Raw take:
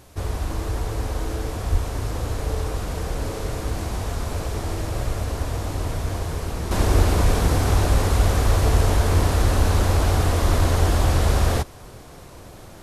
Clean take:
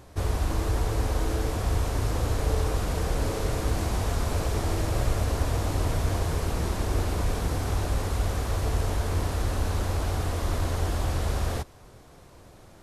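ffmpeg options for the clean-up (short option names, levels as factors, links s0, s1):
-filter_complex "[0:a]asplit=3[s0][s1][s2];[s0]afade=t=out:st=1.71:d=0.02[s3];[s1]highpass=f=140:w=0.5412,highpass=f=140:w=1.3066,afade=t=in:st=1.71:d=0.02,afade=t=out:st=1.83:d=0.02[s4];[s2]afade=t=in:st=1.83:d=0.02[s5];[s3][s4][s5]amix=inputs=3:normalize=0,asplit=3[s6][s7][s8];[s6]afade=t=out:st=6.98:d=0.02[s9];[s7]highpass=f=140:w=0.5412,highpass=f=140:w=1.3066,afade=t=in:st=6.98:d=0.02,afade=t=out:st=7.1:d=0.02[s10];[s8]afade=t=in:st=7.1:d=0.02[s11];[s9][s10][s11]amix=inputs=3:normalize=0,asplit=3[s12][s13][s14];[s12]afade=t=out:st=8.44:d=0.02[s15];[s13]highpass=f=140:w=0.5412,highpass=f=140:w=1.3066,afade=t=in:st=8.44:d=0.02,afade=t=out:st=8.56:d=0.02[s16];[s14]afade=t=in:st=8.56:d=0.02[s17];[s15][s16][s17]amix=inputs=3:normalize=0,agate=range=0.0891:threshold=0.0251,asetnsamples=n=441:p=0,asendcmd='6.71 volume volume -8.5dB',volume=1"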